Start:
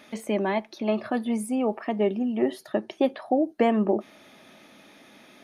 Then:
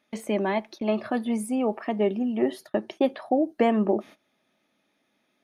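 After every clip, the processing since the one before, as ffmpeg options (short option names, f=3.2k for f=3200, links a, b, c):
-af "agate=range=-20dB:threshold=-42dB:ratio=16:detection=peak"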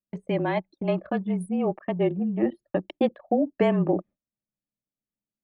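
-af "afreqshift=-31,anlmdn=15.8"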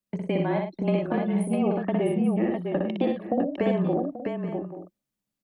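-filter_complex "[0:a]acrossover=split=100|720[a][b][c];[a]acompressor=threshold=-57dB:ratio=4[d];[b]acompressor=threshold=-30dB:ratio=4[e];[c]acompressor=threshold=-42dB:ratio=4[f];[d][e][f]amix=inputs=3:normalize=0,asplit=2[g][h];[h]aecho=0:1:60|104|655|834|879:0.668|0.335|0.562|0.211|0.168[i];[g][i]amix=inputs=2:normalize=0,volume=4.5dB"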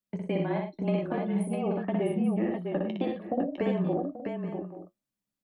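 -af "flanger=delay=9.5:depth=2:regen=-56:speed=0.42:shape=triangular"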